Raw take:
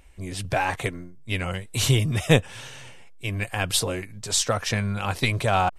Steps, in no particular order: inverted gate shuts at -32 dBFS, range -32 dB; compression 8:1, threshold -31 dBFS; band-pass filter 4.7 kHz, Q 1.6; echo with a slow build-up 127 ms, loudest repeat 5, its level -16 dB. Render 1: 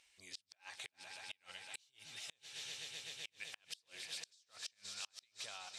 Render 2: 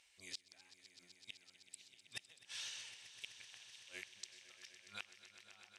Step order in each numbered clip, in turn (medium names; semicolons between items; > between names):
echo with a slow build-up > compression > band-pass filter > inverted gate; band-pass filter > compression > inverted gate > echo with a slow build-up